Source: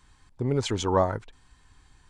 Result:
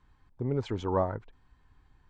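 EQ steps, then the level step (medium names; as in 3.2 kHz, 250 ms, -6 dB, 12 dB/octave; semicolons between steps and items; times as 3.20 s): low-pass 1.4 kHz 6 dB/octave; distance through air 51 m; -4.0 dB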